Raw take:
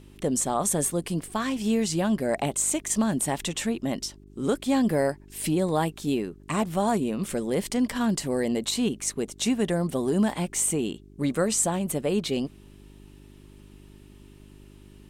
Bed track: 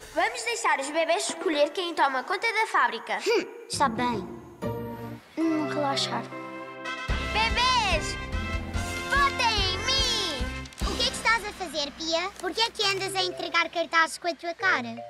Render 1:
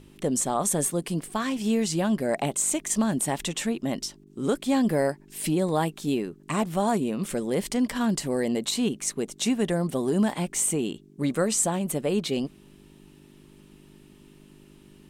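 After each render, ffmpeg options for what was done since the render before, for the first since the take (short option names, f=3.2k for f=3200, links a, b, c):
-af "bandreject=f=50:t=h:w=4,bandreject=f=100:t=h:w=4"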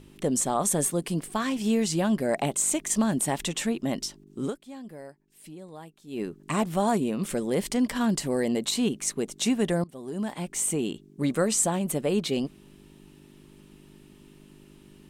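-filter_complex "[0:a]asplit=4[a][b][c][d];[a]atrim=end=4.59,asetpts=PTS-STARTPTS,afade=t=out:st=4.44:d=0.15:c=qua:silence=0.112202[e];[b]atrim=start=4.59:end=6.07,asetpts=PTS-STARTPTS,volume=-19dB[f];[c]atrim=start=6.07:end=9.84,asetpts=PTS-STARTPTS,afade=t=in:d=0.15:c=qua:silence=0.112202,afade=t=out:st=3.766:d=0.004:c=hsin:silence=0.0794328[g];[d]atrim=start=9.84,asetpts=PTS-STARTPTS,afade=t=in:d=1.07:silence=0.0794328[h];[e][f][g][h]concat=n=4:v=0:a=1"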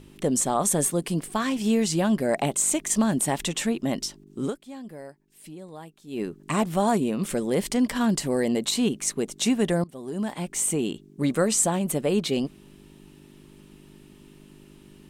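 -af "volume=2dB"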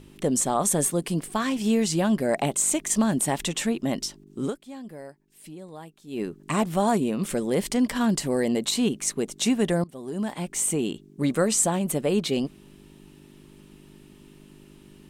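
-af anull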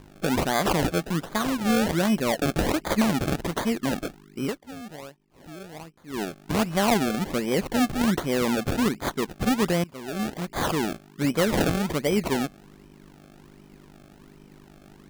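-af "acrusher=samples=31:mix=1:aa=0.000001:lfo=1:lforange=31:lforate=1.3"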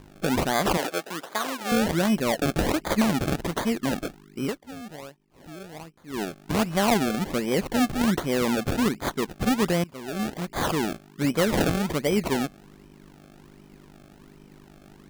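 -filter_complex "[0:a]asettb=1/sr,asplit=3[a][b][c];[a]atrim=end=0.774[d];[b]atrim=start=0.77:end=1.72,asetpts=PTS-STARTPTS,afade=t=in:d=0.004:c=qsin,afade=t=out:st=0.946:d=0.004:c=qsin,highpass=440[e];[c]atrim=start=1.716[f];[d][e]acrossfade=d=0.004:c1=hsin:c2=qsin[g];[g][f]acrossfade=d=0.004:c1=qsin:c2=hsin"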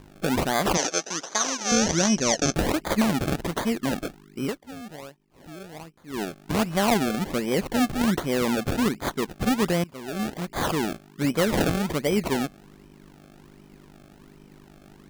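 -filter_complex "[0:a]asplit=3[a][b][c];[a]afade=t=out:st=0.74:d=0.02[d];[b]lowpass=f=6.1k:t=q:w=10,afade=t=in:st=0.74:d=0.02,afade=t=out:st=2.53:d=0.02[e];[c]afade=t=in:st=2.53:d=0.02[f];[d][e][f]amix=inputs=3:normalize=0"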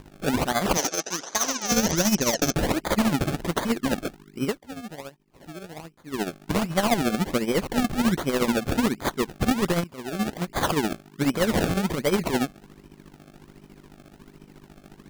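-filter_complex "[0:a]asplit=2[a][b];[b]aeval=exprs='(mod(6.68*val(0)+1,2)-1)/6.68':c=same,volume=-4dB[c];[a][c]amix=inputs=2:normalize=0,tremolo=f=14:d=0.64"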